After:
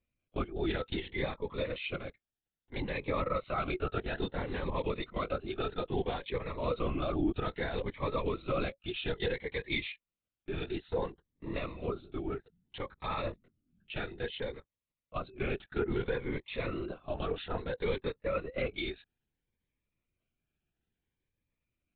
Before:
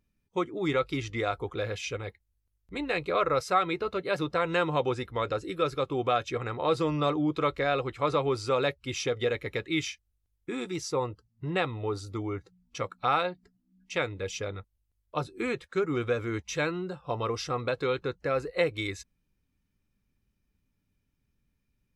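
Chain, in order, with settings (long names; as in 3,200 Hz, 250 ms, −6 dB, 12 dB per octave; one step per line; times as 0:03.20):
high-pass filter 260 Hz 12 dB per octave
brickwall limiter −21.5 dBFS, peak gain reduction 10 dB
linear-prediction vocoder at 8 kHz whisper
phaser whose notches keep moving one way rising 0.6 Hz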